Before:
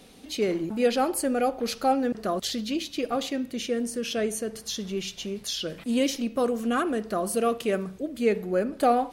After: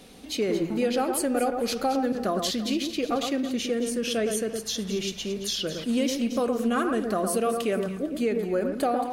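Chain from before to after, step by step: compression, threshold -24 dBFS, peak gain reduction 8 dB; echo whose repeats swap between lows and highs 112 ms, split 1.8 kHz, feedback 52%, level -5.5 dB; trim +2 dB

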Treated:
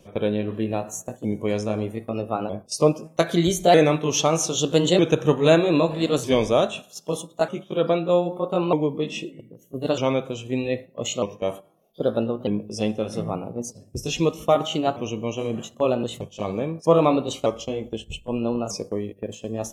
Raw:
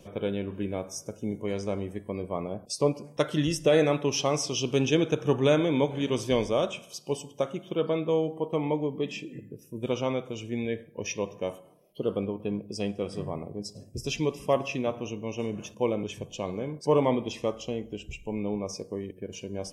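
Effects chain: sawtooth pitch modulation +3 st, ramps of 1247 ms; gate -41 dBFS, range -8 dB; trim +7 dB

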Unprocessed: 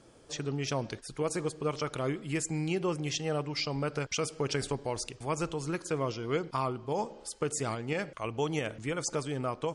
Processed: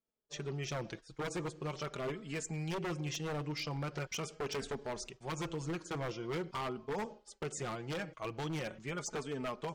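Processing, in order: low-pass 7.4 kHz 24 dB/octave; expander -39 dBFS; dynamic bell 4.7 kHz, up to -5 dB, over -54 dBFS, Q 3; flange 0.43 Hz, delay 4.4 ms, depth 2 ms, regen +11%; wavefolder -30.5 dBFS; trim -1 dB

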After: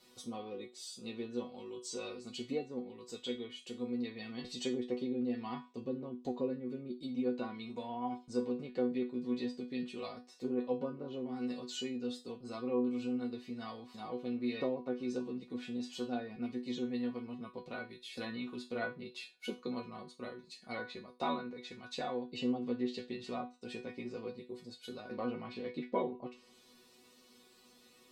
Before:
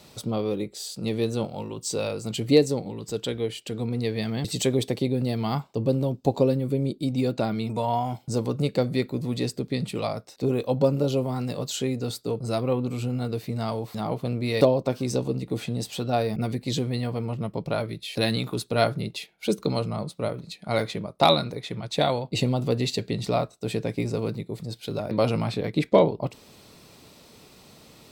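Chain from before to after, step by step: low-pass that closes with the level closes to 1.6 kHz, closed at -19.5 dBFS; bass shelf 100 Hz -11.5 dB; band-stop 730 Hz, Q 12; chord resonator B3 fifth, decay 0.26 s; trim +5.5 dB

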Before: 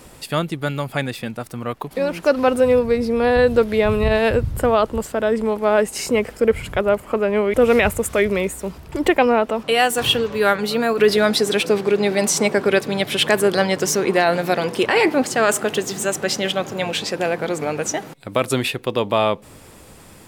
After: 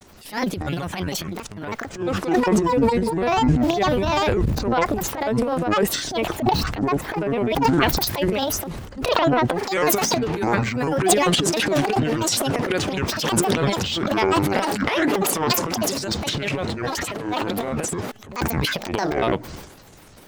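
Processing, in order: vibrato 4.2 Hz 16 cents; granulator, spray 20 ms, pitch spread up and down by 12 st; transient shaper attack -10 dB, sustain +11 dB; trim -2 dB

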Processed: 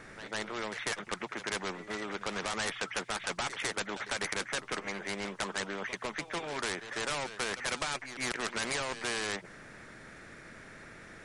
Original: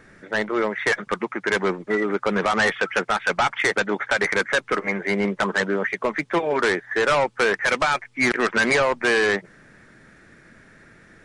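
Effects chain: pre-echo 149 ms -20 dB; spectrum-flattening compressor 2:1; trim -8.5 dB

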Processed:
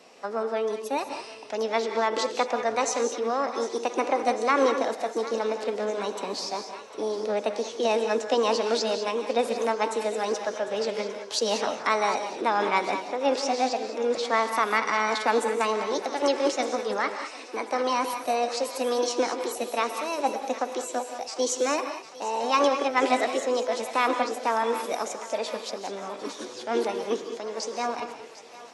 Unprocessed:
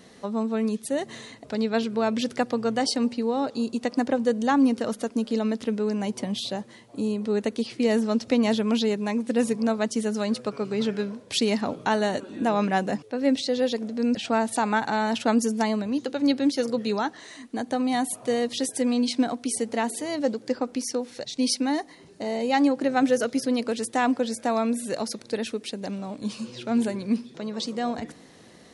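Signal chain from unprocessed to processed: formant shift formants +5 st; three-band isolator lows -19 dB, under 300 Hz, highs -14 dB, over 7.3 kHz; on a send: thinning echo 752 ms, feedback 73%, high-pass 680 Hz, level -15.5 dB; on the sum: gated-style reverb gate 230 ms rising, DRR 7 dB

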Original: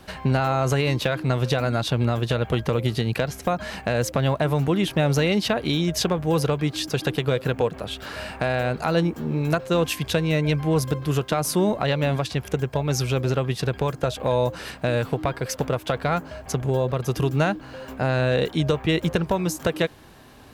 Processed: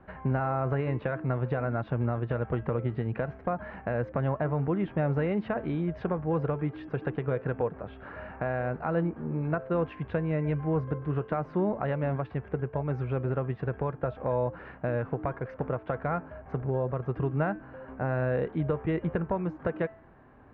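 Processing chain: low-pass 1.8 kHz 24 dB/octave; de-hum 219.5 Hz, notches 15; trim -6.5 dB

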